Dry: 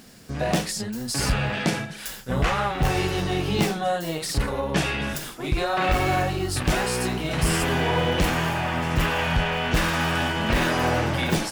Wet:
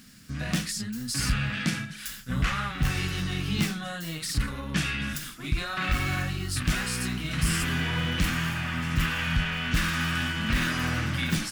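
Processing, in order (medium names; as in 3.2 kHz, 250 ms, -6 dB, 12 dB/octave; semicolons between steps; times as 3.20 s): high-order bell 580 Hz -14 dB; trim -2.5 dB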